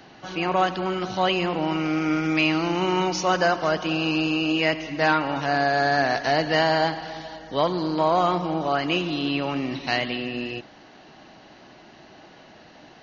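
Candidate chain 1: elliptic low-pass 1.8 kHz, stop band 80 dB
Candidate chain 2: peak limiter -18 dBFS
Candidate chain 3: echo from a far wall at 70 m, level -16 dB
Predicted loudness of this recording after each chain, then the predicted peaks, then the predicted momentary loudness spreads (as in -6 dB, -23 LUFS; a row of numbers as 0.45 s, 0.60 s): -24.5 LUFS, -28.0 LUFS, -23.5 LUFS; -8.5 dBFS, -18.0 dBFS, -8.0 dBFS; 9 LU, 5 LU, 7 LU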